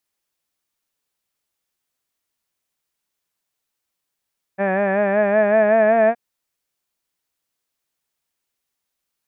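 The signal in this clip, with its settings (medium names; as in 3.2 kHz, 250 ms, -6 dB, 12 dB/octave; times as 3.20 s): formant-synthesis vowel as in had, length 1.57 s, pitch 191 Hz, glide +3 st, vibrato depth 0.65 st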